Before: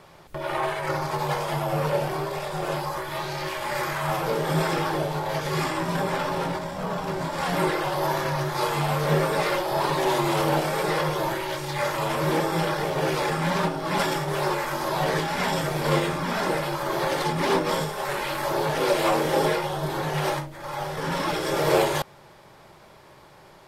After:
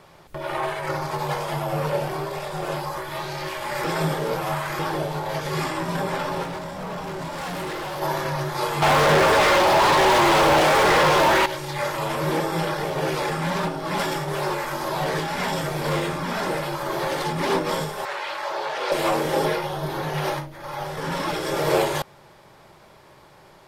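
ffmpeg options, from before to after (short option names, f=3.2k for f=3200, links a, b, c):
-filter_complex "[0:a]asettb=1/sr,asplit=3[a][b][c];[a]atrim=end=6.434[d];[b]atrim=start=6.43:end=8.02,asetpts=PTS-STARTPTS,afade=t=in:d=0.004:c=qsin,afade=t=out:st=1.586:d=0.004:c=qsin,volume=28dB,asoftclip=hard,volume=-28dB[e];[c]atrim=start=8.016[f];[d][e]acrossfade=d=0.004:c1=hsin:c2=qsin[g];[g][f]acrossfade=d=0.004:c1=qsin:c2=hsin,asettb=1/sr,asplit=3[h][i][j];[h]atrim=end=8.824[k];[i]atrim=start=8.82:end=11.46,asetpts=PTS-STARTPTS,afade=t=in:d=0.004:c=qsin,afade=t=out:st=2.636:d=0.004:c=qsin,asplit=2[l][m];[m]highpass=f=720:p=1,volume=32dB,asoftclip=type=tanh:threshold=-10dB[n];[l][n]amix=inputs=2:normalize=0,lowpass=f=2.8k:p=1,volume=-6dB[o];[j]atrim=start=11.456[p];[k][o]acrossfade=d=0.004:c1=hsin:c2=qsin[q];[q][p]acrossfade=d=0.004:c1=qsin:c2=hsin,asettb=1/sr,asplit=3[r][s][t];[r]atrim=end=13.294[u];[s]atrim=start=13.29:end=17.36,asetpts=PTS-STARTPTS,afade=t=in:d=0.004:c=qsin,afade=t=out:st=4.066:d=0.004:c=qsin,asoftclip=type=hard:threshold=-19dB[v];[t]atrim=start=17.356[w];[u][v]acrossfade=d=0.004:c1=hsin:c2=qsin[x];[x][w]acrossfade=d=0.004:c1=qsin:c2=hsin,asettb=1/sr,asplit=3[y][z][aa];[y]atrim=end=18.054[ab];[z]atrim=start=18.05:end=18.92,asetpts=PTS-STARTPTS,afade=t=in:d=0.004:c=qsin,afade=t=out:st=0.866:d=0.004:c=qsin,acrossover=split=470 6300:gain=0.0631 1 0.141[ac][ad][ae];[ac][ad][ae]amix=inputs=3:normalize=0[af];[aa]atrim=start=18.916[ag];[ab][af]acrossfade=d=0.004:c1=hsin:c2=qsin[ah];[ah][ag]acrossfade=d=0.004:c1=qsin:c2=hsin,asettb=1/sr,asplit=3[ai][aj][ak];[ai]atrim=end=19.444[al];[aj]atrim=start=19.44:end=20.86,asetpts=PTS-STARTPTS,afade=t=in:d=0.004:c=qsin,afade=t=out:st=1.416:d=0.004:c=qsin,equalizer=f=7.8k:t=o:w=0.21:g=-10[am];[ak]atrim=start=20.856[an];[al][am]acrossfade=d=0.004:c1=hsin:c2=qsin[ao];[ao][an]acrossfade=d=0.004:c1=qsin:c2=hsin,asplit=3[ap][aq][ar];[ap]atrim=end=3.842[as];[aq]atrim=start=3.838:end=4.792,asetpts=PTS-STARTPTS,areverse[at];[ar]atrim=start=4.788[au];[as][at]acrossfade=d=0.004:c1=hsin:c2=hsin[av];[av][au]acrossfade=d=0.004:c1=hsin:c2=hsin"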